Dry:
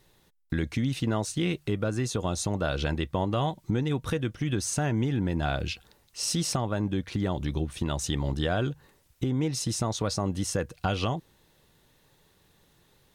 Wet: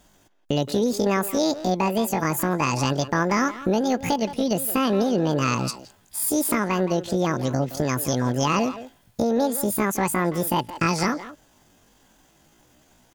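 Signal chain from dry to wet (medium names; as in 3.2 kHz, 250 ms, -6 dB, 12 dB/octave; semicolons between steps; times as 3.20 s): pitch shift +10 st; speakerphone echo 170 ms, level -11 dB; trim +5.5 dB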